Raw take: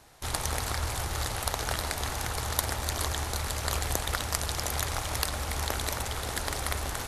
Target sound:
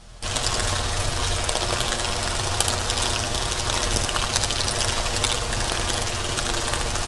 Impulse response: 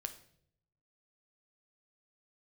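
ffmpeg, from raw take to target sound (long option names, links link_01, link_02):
-filter_complex "[0:a]bass=frequency=250:gain=5,treble=frequency=4000:gain=4,aecho=1:1:6.9:0.71,aeval=exprs='val(0)+0.00447*(sin(2*PI*50*n/s)+sin(2*PI*2*50*n/s)/2+sin(2*PI*3*50*n/s)/3+sin(2*PI*4*50*n/s)/4+sin(2*PI*5*50*n/s)/5)':channel_layout=same,asetrate=36028,aresample=44100,atempo=1.22405,aecho=1:1:77:0.631,asplit=2[link_01][link_02];[1:a]atrim=start_sample=2205,lowpass=7500,lowshelf=frequency=460:gain=-9.5[link_03];[link_02][link_03]afir=irnorm=-1:irlink=0,volume=0dB[link_04];[link_01][link_04]amix=inputs=2:normalize=0"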